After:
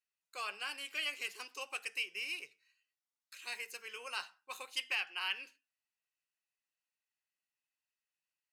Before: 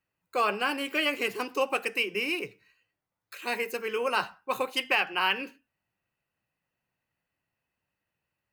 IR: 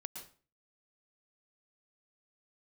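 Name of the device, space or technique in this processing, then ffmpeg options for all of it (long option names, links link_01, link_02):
piezo pickup straight into a mixer: -af "lowpass=7100,aderivative"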